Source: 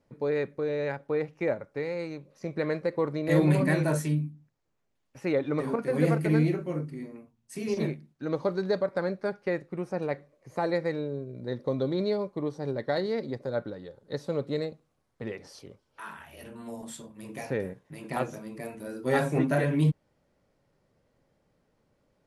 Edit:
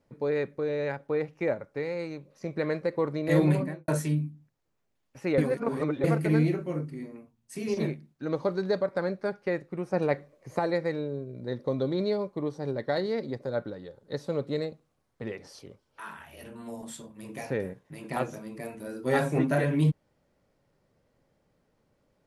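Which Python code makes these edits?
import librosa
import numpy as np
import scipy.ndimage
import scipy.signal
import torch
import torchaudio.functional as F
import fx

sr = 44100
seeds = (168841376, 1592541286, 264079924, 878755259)

y = fx.studio_fade_out(x, sr, start_s=3.42, length_s=0.46)
y = fx.edit(y, sr, fx.reverse_span(start_s=5.38, length_s=0.66),
    fx.clip_gain(start_s=9.93, length_s=0.66, db=4.5), tone=tone)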